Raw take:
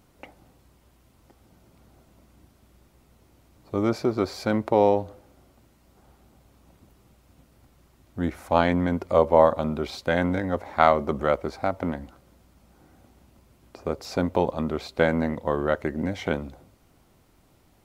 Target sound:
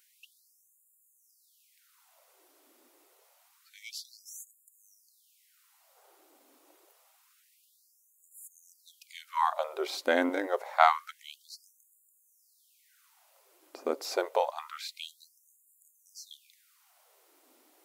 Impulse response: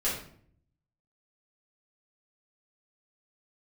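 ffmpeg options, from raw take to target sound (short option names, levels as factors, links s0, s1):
-af "crystalizer=i=1:c=0,afftfilt=real='re*gte(b*sr/1024,250*pow(6900/250,0.5+0.5*sin(2*PI*0.27*pts/sr)))':imag='im*gte(b*sr/1024,250*pow(6900/250,0.5+0.5*sin(2*PI*0.27*pts/sr)))':win_size=1024:overlap=0.75,volume=0.794"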